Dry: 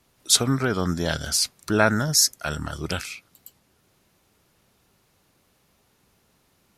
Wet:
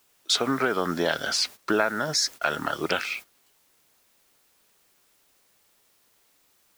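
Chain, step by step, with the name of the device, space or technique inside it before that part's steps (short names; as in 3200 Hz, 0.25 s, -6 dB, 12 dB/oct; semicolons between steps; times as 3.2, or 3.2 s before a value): baby monitor (BPF 360–3300 Hz; compressor 6:1, threshold -28 dBFS, peak gain reduction 14 dB; white noise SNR 20 dB; gate -45 dBFS, range -15 dB); gain +8 dB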